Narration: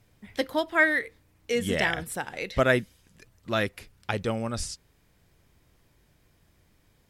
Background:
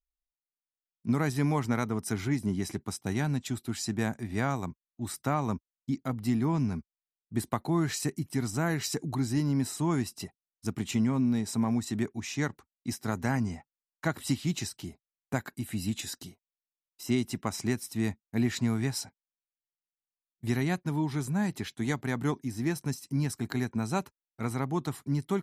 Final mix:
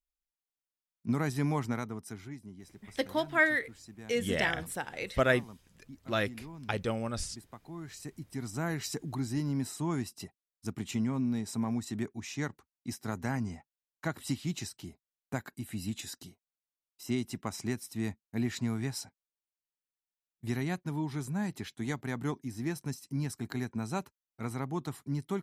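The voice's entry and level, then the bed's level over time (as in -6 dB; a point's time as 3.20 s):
2.60 s, -4.0 dB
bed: 1.61 s -3 dB
2.52 s -18.5 dB
7.60 s -18.5 dB
8.64 s -4.5 dB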